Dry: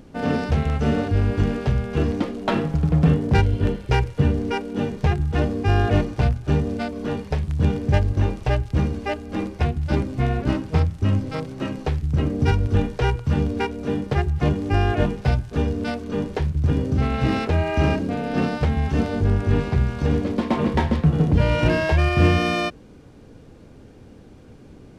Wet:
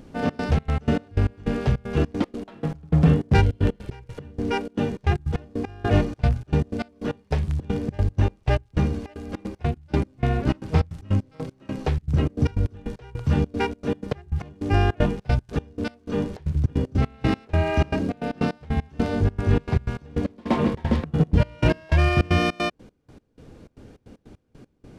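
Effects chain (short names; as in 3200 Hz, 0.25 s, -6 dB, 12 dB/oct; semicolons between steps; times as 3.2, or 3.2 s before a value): step gate "xxx.xx.x.x..x.." 154 bpm -24 dB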